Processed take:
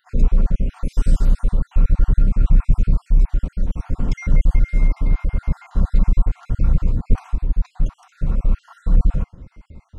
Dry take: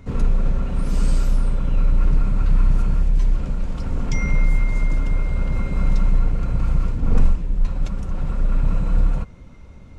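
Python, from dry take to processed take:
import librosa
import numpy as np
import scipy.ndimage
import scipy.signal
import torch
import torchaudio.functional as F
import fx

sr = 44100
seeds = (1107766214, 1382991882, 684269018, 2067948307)

y = fx.spec_dropout(x, sr, seeds[0], share_pct=47)
y = fx.low_shelf(y, sr, hz=490.0, db=7.0)
y = y * librosa.db_to_amplitude(-2.5)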